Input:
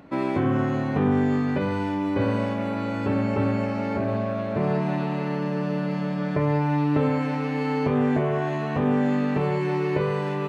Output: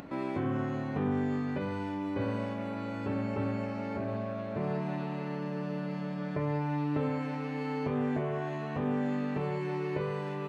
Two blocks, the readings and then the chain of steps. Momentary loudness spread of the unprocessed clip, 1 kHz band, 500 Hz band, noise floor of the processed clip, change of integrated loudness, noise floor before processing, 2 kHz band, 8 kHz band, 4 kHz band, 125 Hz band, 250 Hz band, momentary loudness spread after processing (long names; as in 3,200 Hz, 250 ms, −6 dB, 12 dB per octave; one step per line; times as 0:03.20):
5 LU, −9.0 dB, −9.0 dB, −37 dBFS, −9.0 dB, −28 dBFS, −9.0 dB, can't be measured, −9.0 dB, −9.0 dB, −9.0 dB, 5 LU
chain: upward compression, threshold −27 dBFS
level −9 dB